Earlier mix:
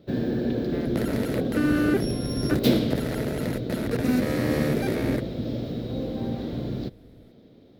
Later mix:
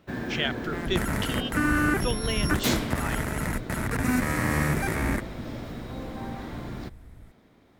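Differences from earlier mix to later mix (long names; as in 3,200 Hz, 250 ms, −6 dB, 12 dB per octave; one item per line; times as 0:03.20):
speech: unmuted
second sound: add bass and treble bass +10 dB, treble +1 dB
master: add octave-band graphic EQ 125/250/500/1,000/2,000/4,000/8,000 Hz −6/−5/−10/+10/+6/−9/+10 dB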